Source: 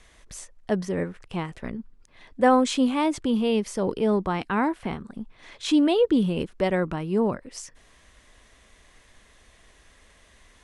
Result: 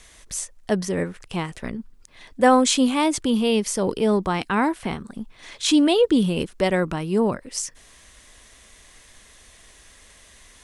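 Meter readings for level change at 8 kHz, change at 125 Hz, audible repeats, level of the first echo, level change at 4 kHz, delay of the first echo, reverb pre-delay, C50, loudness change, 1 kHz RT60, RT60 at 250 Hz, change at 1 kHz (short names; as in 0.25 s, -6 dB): +11.5 dB, +2.5 dB, none, none, +7.5 dB, none, none, none, +2.5 dB, none, none, +3.0 dB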